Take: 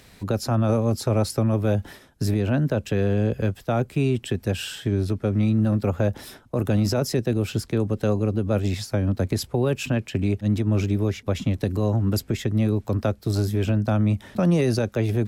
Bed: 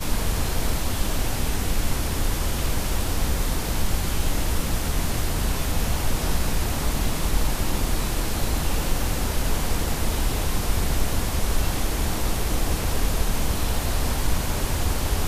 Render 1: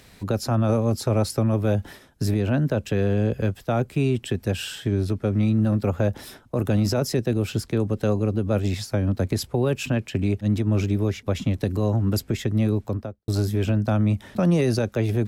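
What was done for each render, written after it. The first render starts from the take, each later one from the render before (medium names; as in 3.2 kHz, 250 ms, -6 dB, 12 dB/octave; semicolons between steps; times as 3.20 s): 12.74–13.28 s: studio fade out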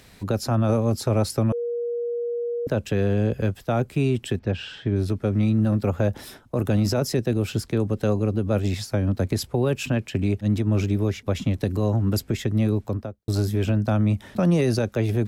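1.52–2.67 s: bleep 475 Hz -24 dBFS; 4.39–4.96 s: distance through air 200 m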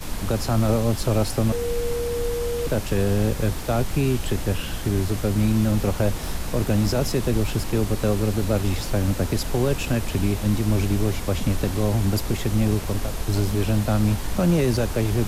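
add bed -5.5 dB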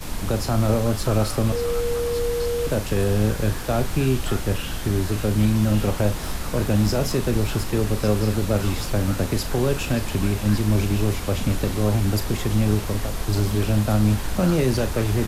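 doubling 38 ms -11 dB; repeats whose band climbs or falls 576 ms, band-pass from 1.4 kHz, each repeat 1.4 oct, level -3 dB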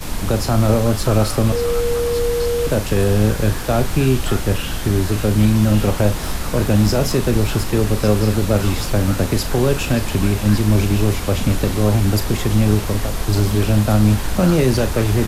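trim +5 dB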